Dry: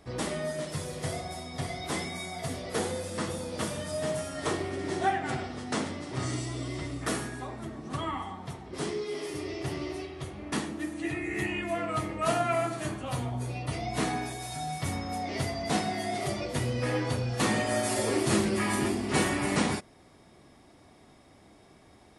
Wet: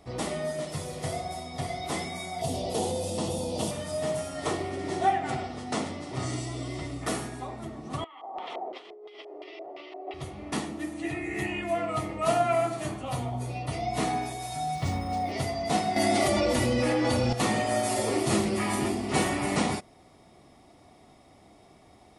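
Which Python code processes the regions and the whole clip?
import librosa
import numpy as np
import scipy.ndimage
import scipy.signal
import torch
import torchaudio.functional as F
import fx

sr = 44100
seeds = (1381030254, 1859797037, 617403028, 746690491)

y = fx.chain(x, sr, fx.band_shelf(hz=1600.0, db=-12.0, octaves=1.2),
    fx.env_flatten(amount_pct=50), at=(2.41, 3.71))
y = fx.chain(y, sr, fx.highpass(hz=370.0, slope=24),
    fx.over_compress(threshold_db=-46.0, ratio=-1.0),
    fx.filter_lfo_lowpass(shape='square', hz=2.9, low_hz=660.0, high_hz=3100.0, q=2.6), at=(8.04, 10.14))
y = fx.chain(y, sr, fx.low_shelf(hz=120.0, db=7.5),
    fx.resample_linear(factor=3), at=(14.75, 15.32))
y = fx.chain(y, sr, fx.comb(ms=3.5, depth=0.62),
    fx.env_flatten(amount_pct=100), at=(15.96, 17.33))
y = fx.peak_eq(y, sr, hz=720.0, db=5.5, octaves=0.33)
y = fx.notch(y, sr, hz=1600.0, q=6.8)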